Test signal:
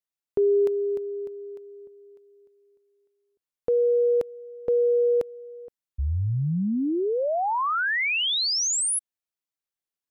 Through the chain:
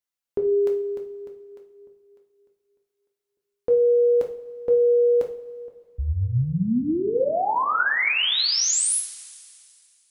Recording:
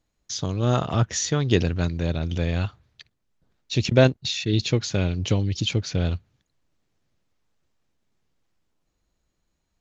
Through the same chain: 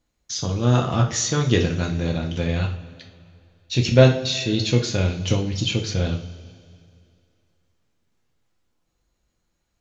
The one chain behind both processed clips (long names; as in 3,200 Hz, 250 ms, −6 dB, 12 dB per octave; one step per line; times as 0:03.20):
coupled-rooms reverb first 0.39 s, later 2.4 s, from −18 dB, DRR 1 dB